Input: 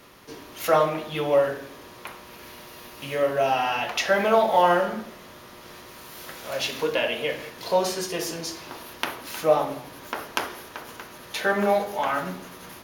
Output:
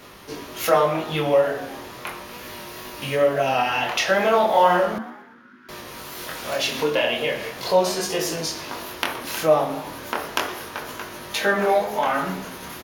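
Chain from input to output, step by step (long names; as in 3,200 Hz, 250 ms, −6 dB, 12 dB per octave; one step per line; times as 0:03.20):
chorus effect 0.36 Hz, delay 19.5 ms, depth 6.8 ms
0:04.98–0:05.69: pair of resonant band-passes 600 Hz, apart 2.6 octaves
echo with shifted repeats 119 ms, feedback 48%, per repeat +84 Hz, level −20 dB
tape wow and flutter 35 cents
in parallel at +1 dB: downward compressor, threshold −33 dBFS, peak gain reduction 16 dB
on the sum: level +3 dB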